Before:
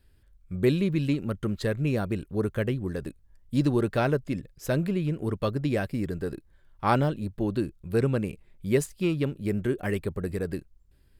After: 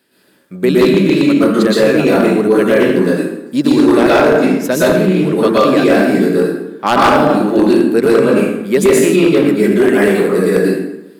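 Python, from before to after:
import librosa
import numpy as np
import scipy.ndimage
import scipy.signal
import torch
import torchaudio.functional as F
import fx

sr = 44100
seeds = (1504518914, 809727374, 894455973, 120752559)

p1 = fx.rev_plate(x, sr, seeds[0], rt60_s=0.93, hf_ratio=0.7, predelay_ms=105, drr_db=-9.0)
p2 = fx.over_compress(p1, sr, threshold_db=-19.0, ratio=-0.5)
p3 = p1 + (p2 * 10.0 ** (-3.0 / 20.0))
p4 = scipy.signal.sosfilt(scipy.signal.butter(4, 210.0, 'highpass', fs=sr, output='sos'), p3)
p5 = 10.0 ** (-8.5 / 20.0) * (np.abs((p4 / 10.0 ** (-8.5 / 20.0) + 3.0) % 4.0 - 2.0) - 1.0)
y = p5 * 10.0 ** (6.0 / 20.0)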